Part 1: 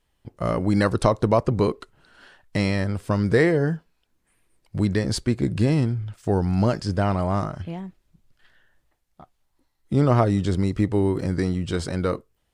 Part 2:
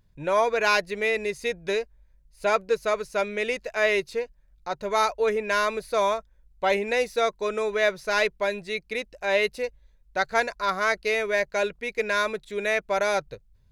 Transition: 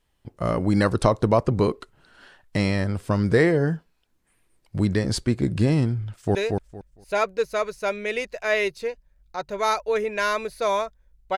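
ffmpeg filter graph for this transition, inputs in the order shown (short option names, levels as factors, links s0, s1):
-filter_complex "[0:a]apad=whole_dur=11.37,atrim=end=11.37,atrim=end=6.352[s0];[1:a]atrim=start=1.668:end=6.69[s1];[s0][s1]acrossfade=d=0.004:c1=hsin:c2=hsin,asplit=2[s2][s3];[s3]afade=t=in:st=6.08:d=0.01,afade=t=out:st=6.35:d=0.01,aecho=0:1:230|460|690:0.668344|0.133669|0.0267338[s4];[s2][s4]amix=inputs=2:normalize=0"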